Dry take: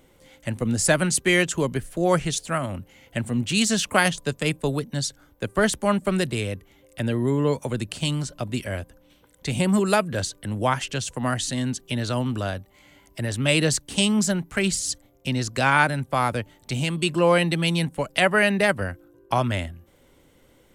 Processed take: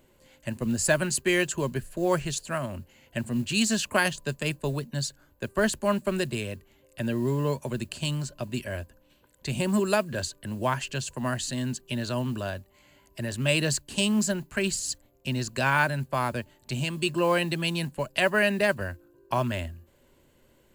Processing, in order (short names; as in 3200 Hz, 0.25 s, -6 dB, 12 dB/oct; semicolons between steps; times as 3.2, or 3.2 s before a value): modulation noise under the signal 28 dB; ripple EQ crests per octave 1.4, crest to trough 6 dB; gain -5 dB